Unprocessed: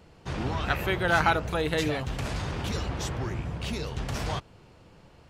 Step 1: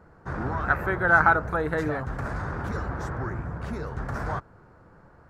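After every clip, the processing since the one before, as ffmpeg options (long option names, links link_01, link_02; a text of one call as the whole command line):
ffmpeg -i in.wav -af "highshelf=frequency=2100:width_type=q:width=3:gain=-11.5" out.wav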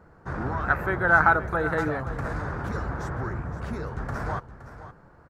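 ffmpeg -i in.wav -af "aecho=1:1:518:0.211" out.wav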